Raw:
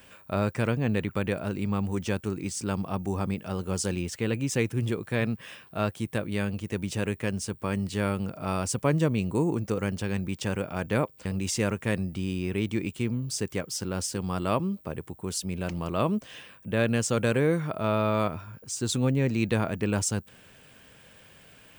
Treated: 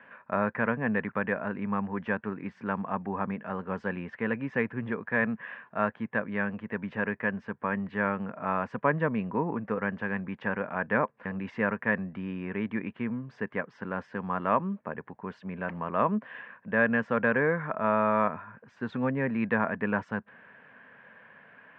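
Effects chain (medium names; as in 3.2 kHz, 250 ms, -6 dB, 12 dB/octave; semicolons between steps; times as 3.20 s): cabinet simulation 220–2100 Hz, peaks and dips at 220 Hz +4 dB, 340 Hz -10 dB, 1 kHz +7 dB, 1.7 kHz +10 dB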